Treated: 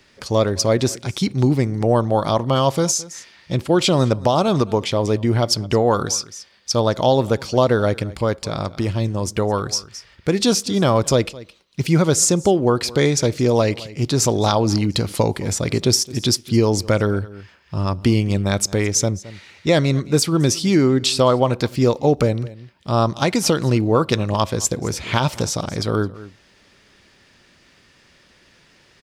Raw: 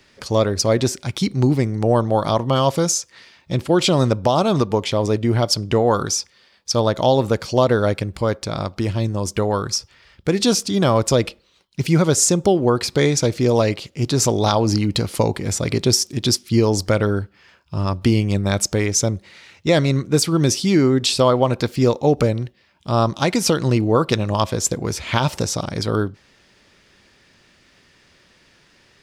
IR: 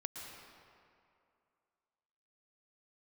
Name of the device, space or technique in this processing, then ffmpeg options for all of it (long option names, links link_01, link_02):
ducked delay: -filter_complex "[0:a]asplit=3[link_01][link_02][link_03];[link_02]adelay=216,volume=-6dB[link_04];[link_03]apad=whole_len=1289309[link_05];[link_04][link_05]sidechaincompress=threshold=-34dB:ratio=6:attack=48:release=431[link_06];[link_01][link_06]amix=inputs=2:normalize=0"